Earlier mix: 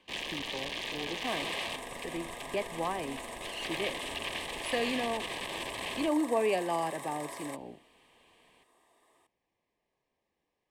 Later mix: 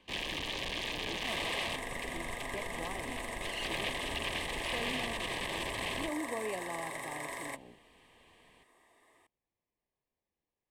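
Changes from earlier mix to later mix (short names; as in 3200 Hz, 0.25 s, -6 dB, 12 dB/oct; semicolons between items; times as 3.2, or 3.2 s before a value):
speech -11.0 dB; second sound: add bell 2000 Hz +7.5 dB 0.47 oct; master: add low shelf 150 Hz +9 dB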